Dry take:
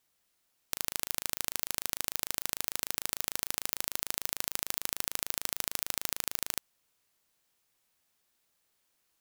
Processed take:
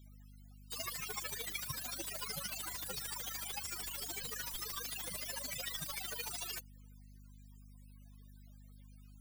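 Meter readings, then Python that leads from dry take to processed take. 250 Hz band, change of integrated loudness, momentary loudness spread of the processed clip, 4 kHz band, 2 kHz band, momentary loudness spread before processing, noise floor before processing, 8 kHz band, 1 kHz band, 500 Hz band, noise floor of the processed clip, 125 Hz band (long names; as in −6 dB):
−3.5 dB, −6.5 dB, 20 LU, −4.5 dB, −4.0 dB, 1 LU, −76 dBFS, −6.5 dB, −4.0 dB, −3.0 dB, −56 dBFS, +2.5 dB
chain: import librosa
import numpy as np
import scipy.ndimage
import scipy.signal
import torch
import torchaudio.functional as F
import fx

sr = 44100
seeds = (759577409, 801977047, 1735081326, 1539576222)

p1 = fx.spec_topn(x, sr, count=16)
p2 = fx.add_hum(p1, sr, base_hz=50, snr_db=14)
p3 = fx.quant_companded(p2, sr, bits=2)
p4 = p2 + F.gain(torch.from_numpy(p3), -4.5).numpy()
p5 = fx.slew_limit(p4, sr, full_power_hz=13.0)
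y = F.gain(torch.from_numpy(p5), 18.0).numpy()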